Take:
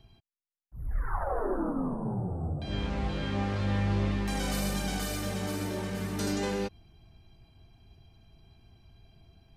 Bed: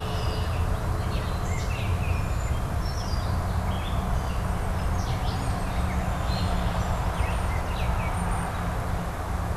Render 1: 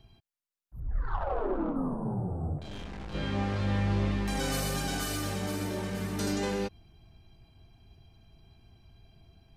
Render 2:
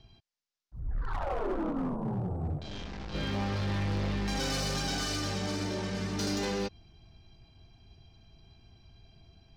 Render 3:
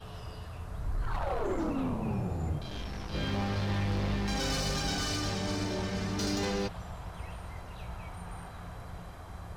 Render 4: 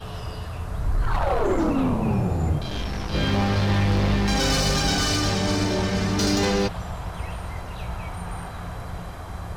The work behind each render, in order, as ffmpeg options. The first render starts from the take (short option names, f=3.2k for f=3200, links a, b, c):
-filter_complex "[0:a]asettb=1/sr,asplit=3[a][b][c];[a]atrim=end=0.804[d];[b]atrim=start=0.8:end=1.76,asetpts=PTS-STARTPTS,afade=t=in:d=0.004:c=qsin,afade=t=out:st=0.956:d=0.004:c=qsin,adynamicsmooth=sensitivity=3:basefreq=1.6k[e];[c]atrim=start=1.756[f];[d][e]acrossfade=d=0.004:c1=hsin:c2=qsin[g];[g][f]acrossfade=d=0.004:c1=qsin:c2=hsin,asplit=3[h][i][j];[h]afade=t=out:st=2.57:d=0.02[k];[i]aeval=exprs='(tanh(89.1*val(0)+0.7)-tanh(0.7))/89.1':c=same,afade=t=in:st=2.57:d=0.02,afade=t=out:st=3.13:d=0.02[l];[j]afade=t=in:st=3.13:d=0.02[m];[k][l][m]amix=inputs=3:normalize=0,asettb=1/sr,asplit=3[n][o][p];[n]atrim=end=4.384[q];[o]atrim=start=4.38:end=5.36,asetpts=PTS-STARTPTS,afade=t=in:d=0.004:c=qsin,afade=t=out:st=0.976:d=0.004:c=qsin,aecho=1:1:7.4:0.65,atrim=end_sample=43218[r];[p]atrim=start=5.356[s];[q][r]acrossfade=d=0.004:c1=hsin:c2=qsin[t];[t][s]acrossfade=d=0.004:c1=qsin:c2=hsin"
-af "lowpass=f=5.4k:t=q:w=2,asoftclip=type=hard:threshold=-27.5dB"
-filter_complex "[1:a]volume=-15.5dB[a];[0:a][a]amix=inputs=2:normalize=0"
-af "volume=10dB"